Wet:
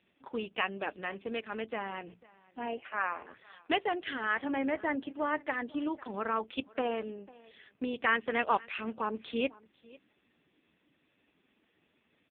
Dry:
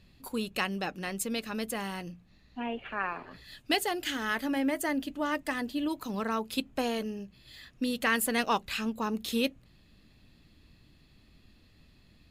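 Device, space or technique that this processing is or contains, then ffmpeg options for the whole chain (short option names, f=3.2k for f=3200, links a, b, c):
satellite phone: -af "highpass=340,lowpass=3.4k,aecho=1:1:498:0.0708,volume=1.5dB" -ar 8000 -c:a libopencore_amrnb -b:a 5150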